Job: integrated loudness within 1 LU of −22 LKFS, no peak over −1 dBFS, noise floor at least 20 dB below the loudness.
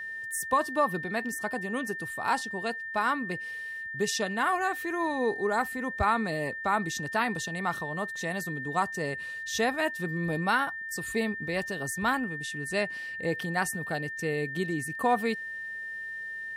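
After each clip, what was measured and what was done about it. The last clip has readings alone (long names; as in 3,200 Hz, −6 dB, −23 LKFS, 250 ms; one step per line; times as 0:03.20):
interfering tone 1,800 Hz; level of the tone −35 dBFS; integrated loudness −30.0 LKFS; sample peak −13.5 dBFS; target loudness −22.0 LKFS
→ notch filter 1,800 Hz, Q 30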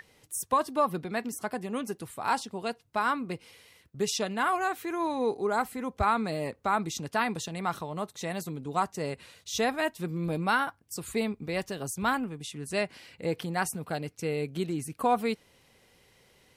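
interfering tone none found; integrated loudness −31.0 LKFS; sample peak −14.0 dBFS; target loudness −22.0 LKFS
→ level +9 dB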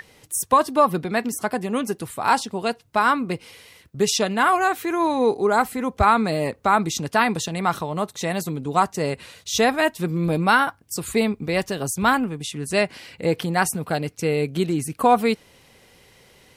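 integrated loudness −22.0 LKFS; sample peak −5.0 dBFS; background noise floor −55 dBFS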